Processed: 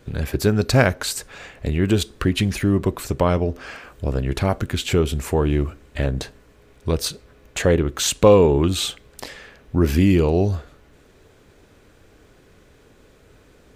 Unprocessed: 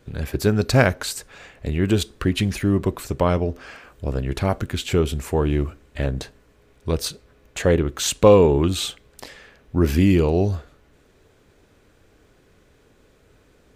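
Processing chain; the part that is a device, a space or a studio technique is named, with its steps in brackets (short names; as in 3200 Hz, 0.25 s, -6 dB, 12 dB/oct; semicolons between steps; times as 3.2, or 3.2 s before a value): parallel compression (in parallel at -1.5 dB: compressor, threshold -27 dBFS, peak gain reduction 17.5 dB); on the sum: gain -1 dB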